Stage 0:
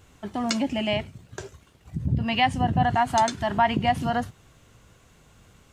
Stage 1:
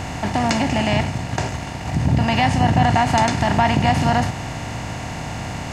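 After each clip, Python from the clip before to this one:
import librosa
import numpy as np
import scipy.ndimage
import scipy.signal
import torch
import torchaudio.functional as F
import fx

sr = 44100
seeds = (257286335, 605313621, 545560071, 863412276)

y = fx.bin_compress(x, sr, power=0.4)
y = fx.bass_treble(y, sr, bass_db=4, treble_db=0)
y = fx.notch(y, sr, hz=3100.0, q=12.0)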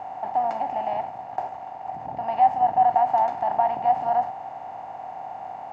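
y = fx.bandpass_q(x, sr, hz=780.0, q=8.1)
y = F.gain(torch.from_numpy(y), 4.5).numpy()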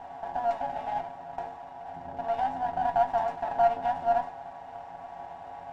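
y = fx.stiff_resonator(x, sr, f0_hz=84.0, decay_s=0.34, stiffness=0.008)
y = fx.running_max(y, sr, window=5)
y = F.gain(torch.from_numpy(y), 6.0).numpy()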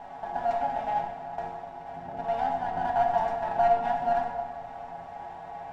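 y = fx.room_shoebox(x, sr, seeds[0], volume_m3=1400.0, walls='mixed', distance_m=1.4)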